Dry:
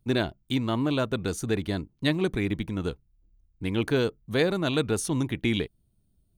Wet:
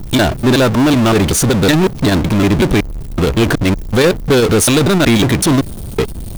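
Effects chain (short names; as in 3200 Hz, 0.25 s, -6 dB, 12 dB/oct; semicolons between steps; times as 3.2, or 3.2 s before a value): slices in reverse order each 0.187 s, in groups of 3; chopper 5.2 Hz, depth 65%, duty 90%; power-law curve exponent 0.35; gain +6.5 dB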